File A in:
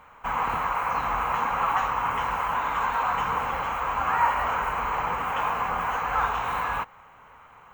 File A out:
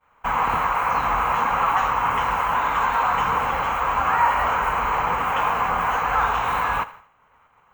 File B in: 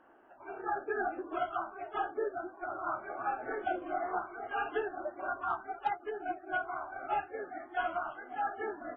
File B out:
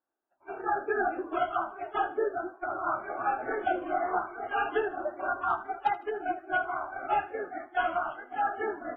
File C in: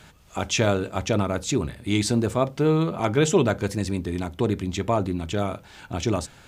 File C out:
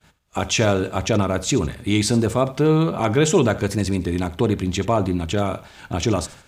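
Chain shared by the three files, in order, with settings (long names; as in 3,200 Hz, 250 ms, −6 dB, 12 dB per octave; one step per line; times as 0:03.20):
downward expander −41 dBFS
in parallel at −1.5 dB: brickwall limiter −17.5 dBFS
on the sum: feedback echo with a high-pass in the loop 78 ms, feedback 35%, level −17 dB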